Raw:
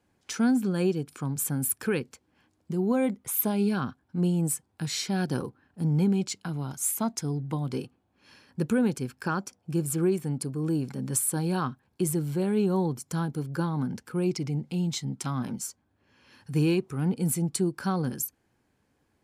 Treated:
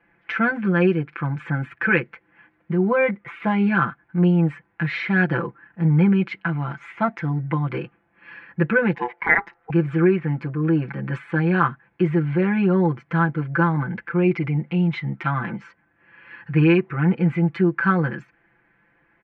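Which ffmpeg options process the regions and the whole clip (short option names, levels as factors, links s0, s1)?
-filter_complex "[0:a]asettb=1/sr,asplit=3[s0][s1][s2];[s0]atrim=end=8.954[s3];[s1]atrim=start=8.95:end=9.7,asetpts=PTS-STARTPTS,afade=t=in:d=0.004:c=qsin,afade=t=out:st=0.746:d=0.004:c=qsin,highshelf=f=8700:g=3,aeval=exprs='val(0)*sin(2*PI*610*n/s)':c=same[s4];[s2]atrim=start=9.696[s5];[s3][s4]acrossfade=d=0.004:c1=hsin:c2=qsin[s6];[s6][s5]acrossfade=d=0.004:c1=qsin:c2=hsin,lowpass=f=2400:w=0.5412,lowpass=f=2400:w=1.3066,equalizer=f=1900:w=0.96:g=15,aecho=1:1:5.9:1,volume=1.26"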